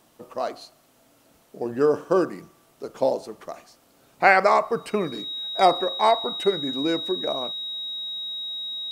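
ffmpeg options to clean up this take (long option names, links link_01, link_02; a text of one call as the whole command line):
ffmpeg -i in.wav -af "bandreject=frequency=3800:width=30" out.wav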